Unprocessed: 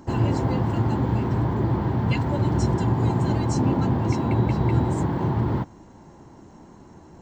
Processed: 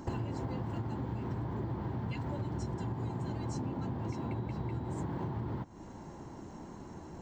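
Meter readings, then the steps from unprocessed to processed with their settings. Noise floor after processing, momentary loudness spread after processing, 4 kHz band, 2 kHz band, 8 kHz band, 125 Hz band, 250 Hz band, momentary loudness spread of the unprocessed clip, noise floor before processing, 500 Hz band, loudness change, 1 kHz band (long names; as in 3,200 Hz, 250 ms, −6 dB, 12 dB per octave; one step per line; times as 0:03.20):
−48 dBFS, 10 LU, −14.5 dB, −14.0 dB, −13.5 dB, −14.5 dB, −14.0 dB, 2 LU, −48 dBFS, −14.0 dB, −15.5 dB, −14.0 dB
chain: downward compressor 16 to 1, threshold −33 dBFS, peak gain reduction 19 dB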